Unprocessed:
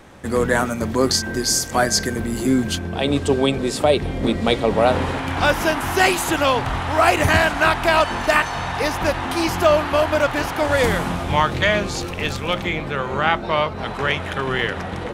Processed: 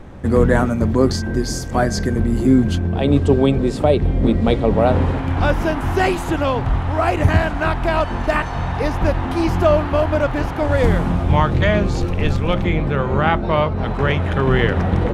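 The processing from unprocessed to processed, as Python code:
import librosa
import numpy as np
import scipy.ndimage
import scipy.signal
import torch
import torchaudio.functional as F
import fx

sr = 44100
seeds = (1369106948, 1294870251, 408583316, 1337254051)

y = fx.rider(x, sr, range_db=10, speed_s=2.0)
y = fx.tilt_eq(y, sr, slope=-3.0)
y = y * librosa.db_to_amplitude(-2.0)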